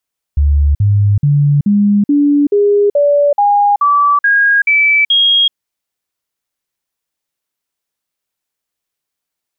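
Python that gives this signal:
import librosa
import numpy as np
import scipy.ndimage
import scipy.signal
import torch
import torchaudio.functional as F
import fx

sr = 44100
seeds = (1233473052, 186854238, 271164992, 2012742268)

y = fx.stepped_sweep(sr, from_hz=72.2, direction='up', per_octave=2, tones=12, dwell_s=0.38, gap_s=0.05, level_db=-7.0)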